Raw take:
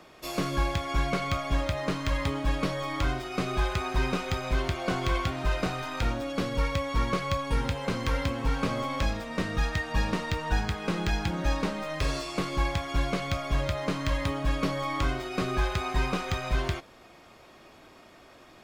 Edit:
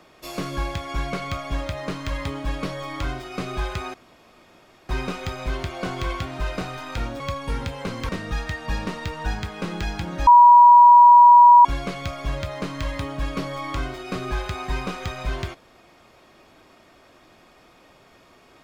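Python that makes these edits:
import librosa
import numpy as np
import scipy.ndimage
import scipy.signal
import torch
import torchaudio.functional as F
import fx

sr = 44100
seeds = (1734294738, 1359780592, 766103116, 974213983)

y = fx.edit(x, sr, fx.insert_room_tone(at_s=3.94, length_s=0.95),
    fx.cut(start_s=6.25, length_s=0.98),
    fx.cut(start_s=8.12, length_s=1.23),
    fx.bleep(start_s=11.53, length_s=1.38, hz=965.0, db=-6.5), tone=tone)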